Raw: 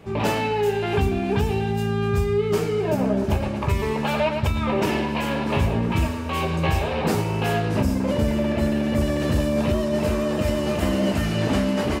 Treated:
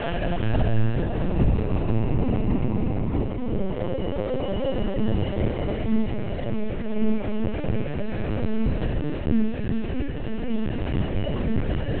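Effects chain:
reverb reduction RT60 1.5 s
high-pass filter 86 Hz 24 dB per octave
low-shelf EQ 150 Hz +11.5 dB
in parallel at −2 dB: brickwall limiter −14 dBFS, peak gain reduction 7 dB
on the sum: extreme stretch with random phases 7.9×, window 0.50 s, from 0:07.54
flanger 0.86 Hz, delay 3.4 ms, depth 8.3 ms, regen −18%
on a send: flutter between parallel walls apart 6.3 metres, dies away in 0.43 s
on the sum: linear-prediction vocoder at 8 kHz pitch kept
level −4.5 dB

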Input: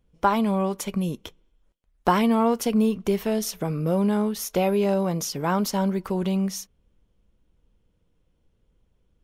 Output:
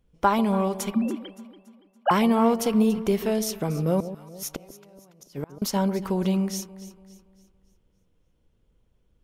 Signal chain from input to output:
0:00.92–0:02.11: three sine waves on the formant tracks
0:04.00–0:05.62: gate with flip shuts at −18 dBFS, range −31 dB
delay that swaps between a low-pass and a high-pass 142 ms, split 820 Hz, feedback 63%, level −12 dB

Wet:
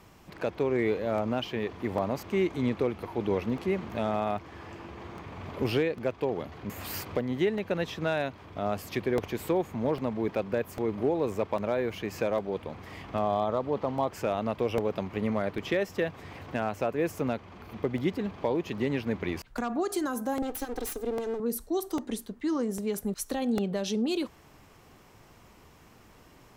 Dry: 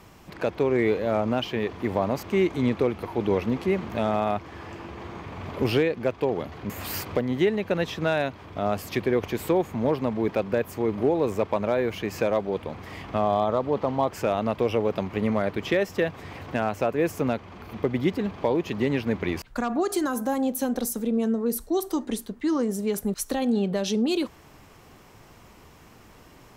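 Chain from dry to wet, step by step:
0:20.42–0:21.40: lower of the sound and its delayed copy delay 2.5 ms
regular buffer underruns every 0.80 s, samples 64, repeat, from 0:00.38
level −4.5 dB

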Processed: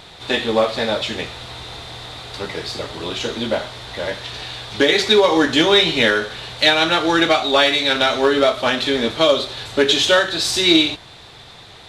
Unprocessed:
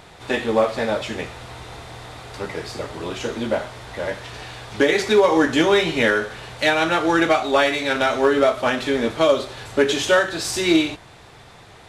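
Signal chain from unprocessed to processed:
parametric band 3,800 Hz +11 dB 0.75 octaves
level +1 dB

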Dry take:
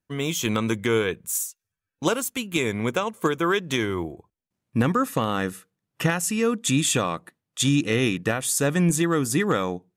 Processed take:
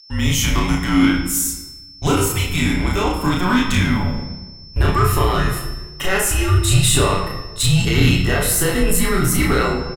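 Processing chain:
pitch glide at a constant tempo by +3.5 semitones starting unshifted
in parallel at −8 dB: wave folding −20 dBFS
on the sum: double-tracking delay 33 ms −2 dB
steady tone 5,500 Hz −43 dBFS
transient designer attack −1 dB, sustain +5 dB
on a send at −1.5 dB: convolution reverb RT60 1.2 s, pre-delay 7 ms
on the sum: frequency shifter −180 Hz
level +1.5 dB

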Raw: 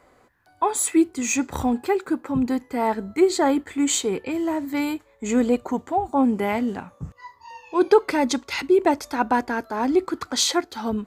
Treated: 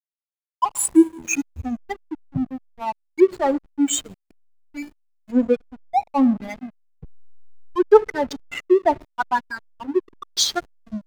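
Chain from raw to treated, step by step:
spectral dynamics exaggerated over time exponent 3
four-comb reverb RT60 1 s, combs from 27 ms, DRR 16.5 dB
slack as between gear wheels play −31 dBFS
level +6.5 dB

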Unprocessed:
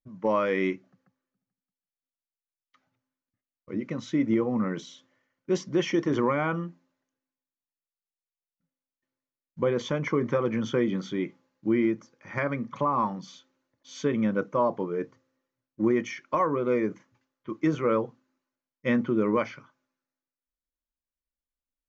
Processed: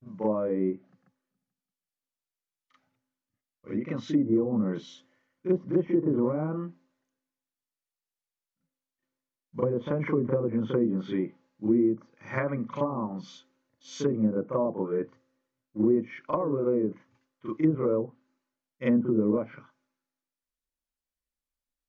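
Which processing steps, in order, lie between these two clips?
treble cut that deepens with the level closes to 530 Hz, closed at −22 dBFS
backwards echo 38 ms −7 dB

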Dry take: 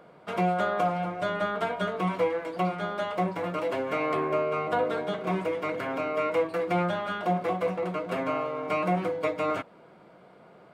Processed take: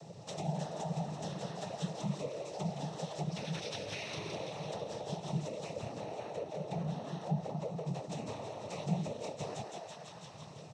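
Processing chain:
0:03.29–0:04.23: gain on a spectral selection 1,300–4,400 Hz +11 dB
0:05.78–0:07.87: high-shelf EQ 2,700 Hz −11 dB
echo with shifted repeats 166 ms, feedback 62%, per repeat +95 Hz, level −7 dB
downward compressor 2.5 to 1, threshold −46 dBFS, peak gain reduction 17 dB
cochlear-implant simulation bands 12
drawn EQ curve 160 Hz 0 dB, 250 Hz −16 dB, 370 Hz −14 dB, 680 Hz −11 dB, 1,500 Hz −27 dB, 6,200 Hz +6 dB
level +13.5 dB

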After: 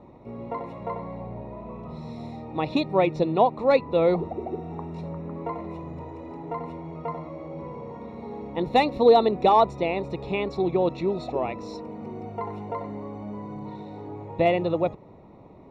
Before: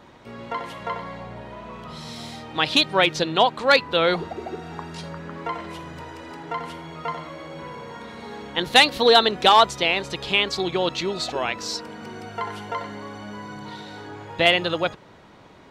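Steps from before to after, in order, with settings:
moving average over 28 samples
level +2.5 dB

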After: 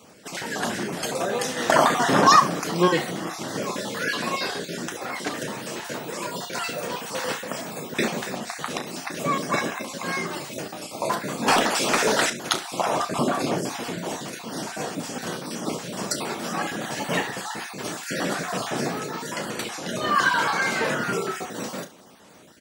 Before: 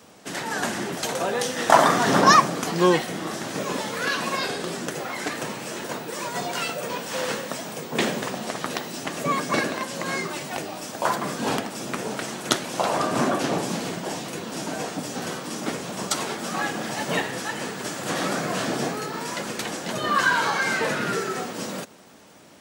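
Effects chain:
time-frequency cells dropped at random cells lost 24%
0:11.48–0:12.30: mid-hump overdrive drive 21 dB, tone 6,600 Hz, clips at −8.5 dBFS
ambience of single reflections 34 ms −10.5 dB, 69 ms −16.5 dB

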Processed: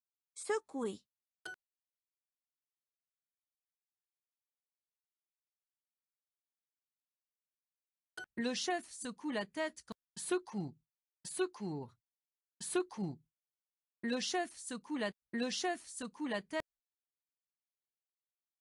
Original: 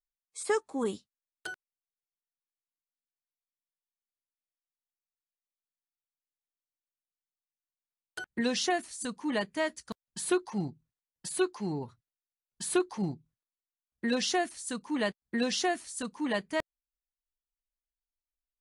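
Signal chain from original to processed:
downward expander −49 dBFS
level −7 dB

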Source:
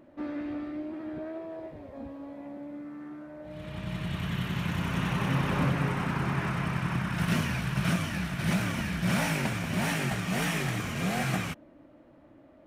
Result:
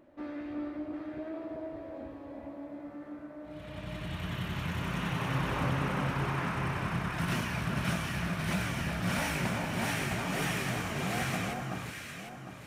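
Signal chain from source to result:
parametric band 180 Hz −4.5 dB 1.3 octaves
on a send: delay that swaps between a low-pass and a high-pass 377 ms, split 1,400 Hz, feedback 61%, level −2 dB
on the sum: level −3 dB

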